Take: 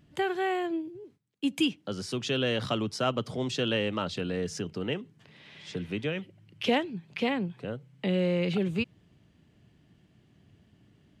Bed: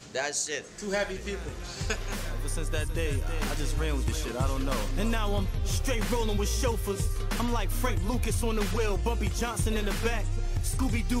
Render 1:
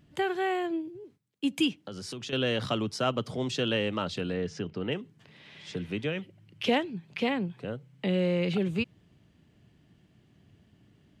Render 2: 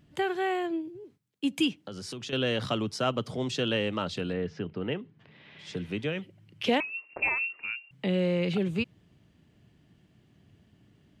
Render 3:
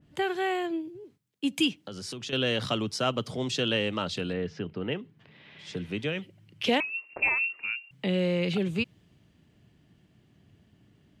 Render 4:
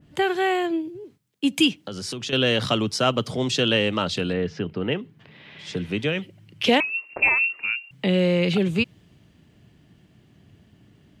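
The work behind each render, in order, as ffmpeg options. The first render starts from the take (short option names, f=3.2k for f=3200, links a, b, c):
-filter_complex "[0:a]asettb=1/sr,asplit=3[a][b][c];[a]atrim=end=1.784[d];[b]atrim=start=1.78:end=2.33,asetpts=PTS-STARTPTS,afade=t=in:d=0.004:c=qsin,afade=t=out:st=0.546:d=0.004:c=qsin,acompressor=threshold=-35dB:ratio=6:attack=3.2:release=140:knee=1:detection=peak[e];[c]atrim=start=2.326[f];[d][e]acrossfade=d=0.004:c1=hsin:c2=qsin[g];[g][f]acrossfade=d=0.004:c1=qsin:c2=hsin,asplit=3[h][i][j];[h]afade=t=out:st=4.33:d=0.02[k];[i]lowpass=4k,afade=t=in:st=4.33:d=0.02,afade=t=out:st=4.9:d=0.02[l];[j]afade=t=in:st=4.9:d=0.02[m];[k][l][m]amix=inputs=3:normalize=0"
-filter_complex "[0:a]asettb=1/sr,asplit=3[a][b][c];[a]atrim=end=4.334[d];[b]atrim=start=4.33:end=5.59,asetpts=PTS-STARTPTS,afade=t=in:d=0.004:c=qsin,afade=t=out:st=1.256:d=0.004:c=qsin,lowpass=3.2k[e];[c]atrim=start=5.586[f];[d][e]acrossfade=d=0.004:c1=hsin:c2=qsin[g];[g][f]acrossfade=d=0.004:c1=qsin:c2=hsin,asettb=1/sr,asplit=3[h][i][j];[h]atrim=end=6.804[k];[i]atrim=start=6.8:end=7.91,asetpts=PTS-STARTPTS,afade=t=in:d=0.004:c=qsin,afade=t=out:st=1.106:d=0.004:c=qsin,lowpass=f=2.5k:t=q:w=0.5098,lowpass=f=2.5k:t=q:w=0.6013,lowpass=f=2.5k:t=q:w=0.9,lowpass=f=2.5k:t=q:w=2.563,afreqshift=-2900[l];[j]atrim=start=7.906[m];[k][l]acrossfade=d=0.004:c1=hsin:c2=qsin[n];[n][m]acrossfade=d=0.004:c1=qsin:c2=hsin"
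-af "adynamicequalizer=threshold=0.00794:dfrequency=2200:dqfactor=0.7:tfrequency=2200:tqfactor=0.7:attack=5:release=100:ratio=0.375:range=2:mode=boostabove:tftype=highshelf"
-af "volume=6.5dB"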